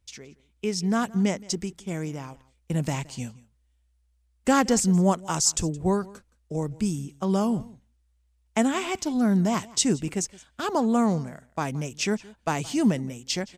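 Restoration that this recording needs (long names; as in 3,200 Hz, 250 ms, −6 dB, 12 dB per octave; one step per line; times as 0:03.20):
echo removal 170 ms −22 dB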